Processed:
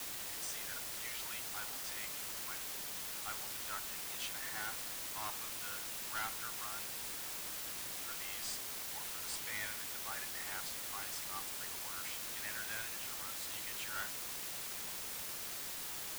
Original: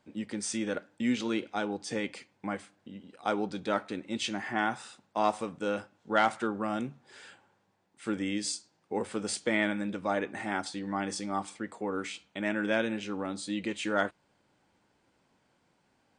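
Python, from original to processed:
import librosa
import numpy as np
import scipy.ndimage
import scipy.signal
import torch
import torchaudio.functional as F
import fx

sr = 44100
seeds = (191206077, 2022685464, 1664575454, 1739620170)

y = scipy.signal.sosfilt(scipy.signal.butter(4, 1000.0, 'highpass', fs=sr, output='sos'), x)
y = fx.tube_stage(y, sr, drive_db=28.0, bias=0.4)
y = fx.quant_dither(y, sr, seeds[0], bits=6, dither='triangular')
y = y * librosa.db_to_amplitude(-7.5)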